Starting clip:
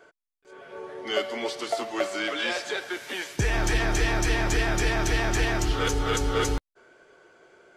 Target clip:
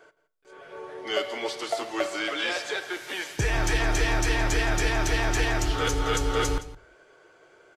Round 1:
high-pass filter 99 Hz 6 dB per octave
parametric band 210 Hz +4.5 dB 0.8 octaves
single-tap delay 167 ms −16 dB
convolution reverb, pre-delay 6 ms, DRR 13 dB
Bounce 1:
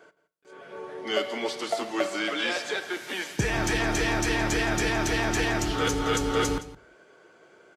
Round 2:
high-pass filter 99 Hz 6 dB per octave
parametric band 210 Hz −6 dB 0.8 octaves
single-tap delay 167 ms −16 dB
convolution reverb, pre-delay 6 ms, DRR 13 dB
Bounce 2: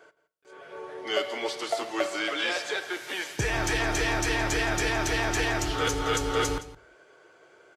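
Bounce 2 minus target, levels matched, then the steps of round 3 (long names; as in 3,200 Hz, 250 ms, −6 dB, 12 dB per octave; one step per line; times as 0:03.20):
125 Hz band −3.0 dB
parametric band 210 Hz −6 dB 0.8 octaves
single-tap delay 167 ms −16 dB
convolution reverb, pre-delay 6 ms, DRR 13 dB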